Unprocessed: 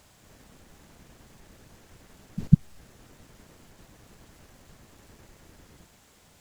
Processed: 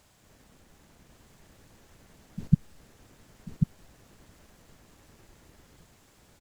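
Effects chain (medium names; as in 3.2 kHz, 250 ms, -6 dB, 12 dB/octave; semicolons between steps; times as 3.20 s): delay 1091 ms -4.5 dB; trim -4.5 dB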